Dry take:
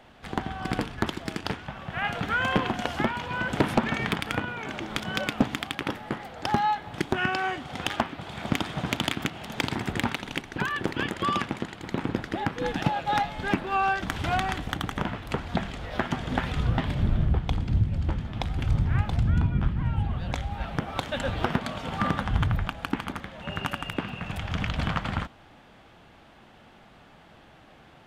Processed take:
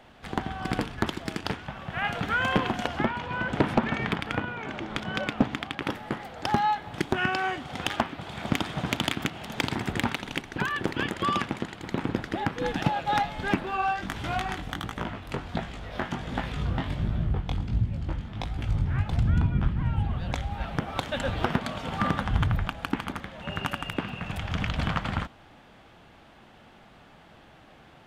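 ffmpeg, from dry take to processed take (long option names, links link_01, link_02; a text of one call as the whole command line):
ffmpeg -i in.wav -filter_complex "[0:a]asettb=1/sr,asplit=3[link_01][link_02][link_03];[link_01]atrim=end=2.874[link_04];[link_02]atrim=start=2.87:end=5.82,asetpts=PTS-STARTPTS,afade=type=in:duration=0.004:curve=qsin,afade=type=out:start_time=2.946:duration=0.004:curve=qsin,aemphasis=mode=reproduction:type=50kf[link_05];[link_03]atrim=start=5.816[link_06];[link_04][link_05]acrossfade=duration=0.004:curve1=hsin:curve2=qsin[link_07];[link_07][link_06]acrossfade=duration=0.004:curve1=qsin:curve2=hsin,asplit=3[link_08][link_09][link_10];[link_08]afade=type=out:start_time=13.7:duration=0.02[link_11];[link_09]flanger=delay=17:depth=5.2:speed=1.4,afade=type=in:start_time=13.7:duration=0.02,afade=type=out:start_time=19.09:duration=0.02[link_12];[link_10]afade=type=in:start_time=19.09:duration=0.02[link_13];[link_11][link_12][link_13]amix=inputs=3:normalize=0" out.wav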